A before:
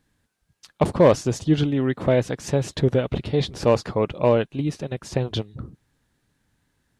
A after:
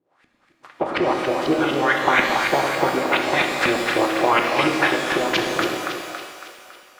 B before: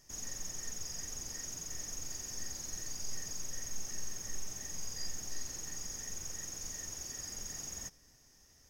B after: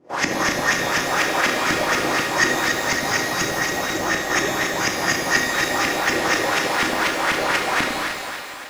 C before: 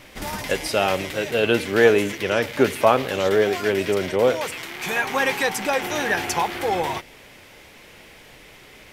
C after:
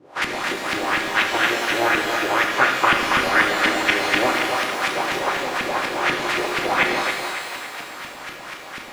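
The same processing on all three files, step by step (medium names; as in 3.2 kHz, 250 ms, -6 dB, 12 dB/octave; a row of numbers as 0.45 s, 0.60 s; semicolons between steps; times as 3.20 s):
spectral peaks clipped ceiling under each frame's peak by 27 dB; compression 6:1, threshold -28 dBFS; high-pass 72 Hz; dynamic bell 350 Hz, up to +6 dB, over -55 dBFS, Q 7.2; gain riding within 4 dB 0.5 s; RIAA curve recording; comb of notches 220 Hz; LFO low-pass saw up 4.1 Hz 260–2400 Hz; two-band feedback delay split 470 Hz, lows 101 ms, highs 278 ms, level -6 dB; pitch-shifted reverb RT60 1.6 s, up +12 st, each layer -8 dB, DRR 3 dB; normalise loudness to -20 LUFS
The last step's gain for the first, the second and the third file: +11.0 dB, +21.0 dB, +10.0 dB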